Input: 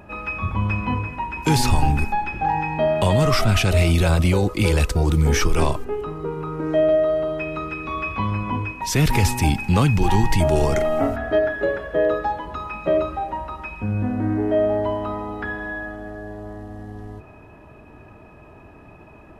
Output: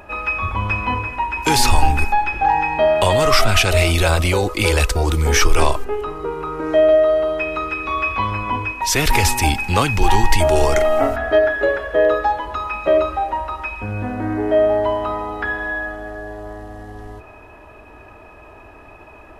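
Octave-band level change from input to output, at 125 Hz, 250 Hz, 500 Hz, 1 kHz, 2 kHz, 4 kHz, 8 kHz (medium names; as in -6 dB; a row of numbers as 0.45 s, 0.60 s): -1.5 dB, -2.0 dB, +4.5 dB, +6.0 dB, +7.0 dB, +7.0 dB, +7.0 dB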